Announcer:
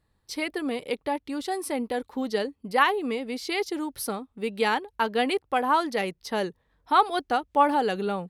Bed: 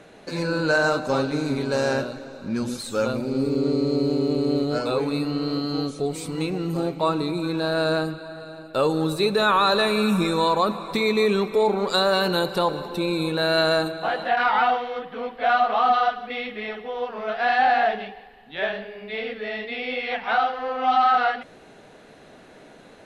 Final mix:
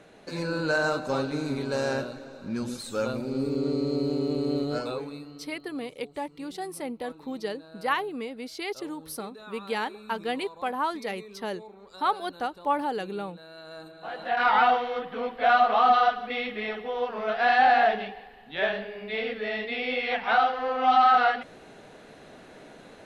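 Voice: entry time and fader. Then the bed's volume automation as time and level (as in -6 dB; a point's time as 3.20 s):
5.10 s, -5.5 dB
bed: 4.79 s -5 dB
5.58 s -26 dB
13.62 s -26 dB
14.49 s -0.5 dB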